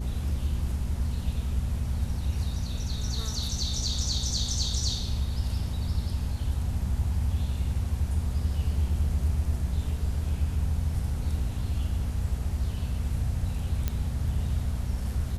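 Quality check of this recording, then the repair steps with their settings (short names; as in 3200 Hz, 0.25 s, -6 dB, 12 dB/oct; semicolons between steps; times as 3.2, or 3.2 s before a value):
hum 60 Hz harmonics 4 -33 dBFS
13.88 pop -14 dBFS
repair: de-click; de-hum 60 Hz, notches 4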